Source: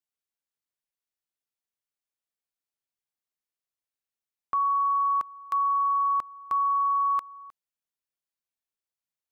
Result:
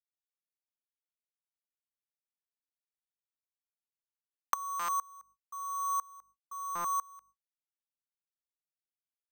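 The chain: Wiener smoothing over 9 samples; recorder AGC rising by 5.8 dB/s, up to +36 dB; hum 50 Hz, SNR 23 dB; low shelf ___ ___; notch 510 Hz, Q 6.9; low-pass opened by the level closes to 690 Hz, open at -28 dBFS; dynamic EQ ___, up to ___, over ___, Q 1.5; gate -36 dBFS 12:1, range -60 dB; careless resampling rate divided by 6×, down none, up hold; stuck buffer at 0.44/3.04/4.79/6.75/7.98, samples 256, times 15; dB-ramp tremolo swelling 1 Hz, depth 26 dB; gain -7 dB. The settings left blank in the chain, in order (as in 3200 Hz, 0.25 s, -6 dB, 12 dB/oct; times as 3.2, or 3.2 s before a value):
470 Hz, -10 dB, 950 Hz, +5 dB, -36 dBFS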